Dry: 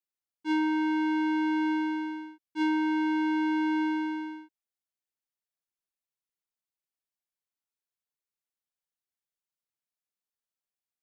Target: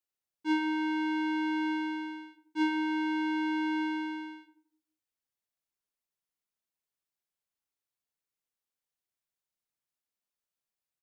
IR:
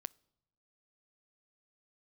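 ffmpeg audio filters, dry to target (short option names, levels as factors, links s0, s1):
-filter_complex "[0:a]asplit=2[s0][s1];[s1]adelay=85,lowpass=f=830:p=1,volume=0.562,asplit=2[s2][s3];[s3]adelay=85,lowpass=f=830:p=1,volume=0.48,asplit=2[s4][s5];[s5]adelay=85,lowpass=f=830:p=1,volume=0.48,asplit=2[s6][s7];[s7]adelay=85,lowpass=f=830:p=1,volume=0.48,asplit=2[s8][s9];[s9]adelay=85,lowpass=f=830:p=1,volume=0.48,asplit=2[s10][s11];[s11]adelay=85,lowpass=f=830:p=1,volume=0.48[s12];[s0][s2][s4][s6][s8][s10][s12]amix=inputs=7:normalize=0"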